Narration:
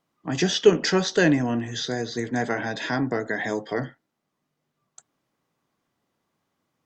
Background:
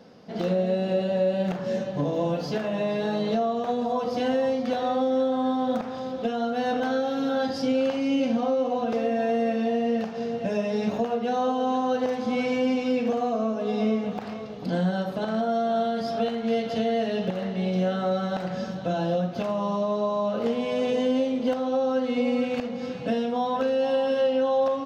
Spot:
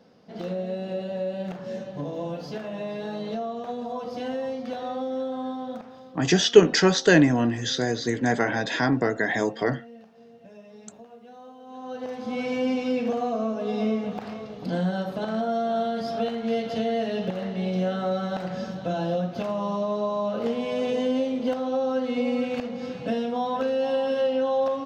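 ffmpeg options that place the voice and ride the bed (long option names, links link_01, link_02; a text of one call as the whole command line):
ffmpeg -i stem1.wav -i stem2.wav -filter_complex "[0:a]adelay=5900,volume=2.5dB[link_01];[1:a]volume=14dB,afade=type=out:start_time=5.4:duration=0.9:silence=0.177828,afade=type=in:start_time=11.66:duration=1.01:silence=0.1[link_02];[link_01][link_02]amix=inputs=2:normalize=0" out.wav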